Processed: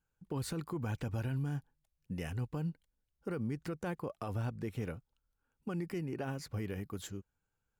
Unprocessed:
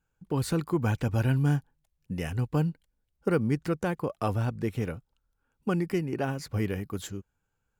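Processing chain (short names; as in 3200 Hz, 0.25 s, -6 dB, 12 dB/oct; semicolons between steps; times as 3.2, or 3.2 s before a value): limiter -23.5 dBFS, peak gain reduction 9.5 dB; gain -6 dB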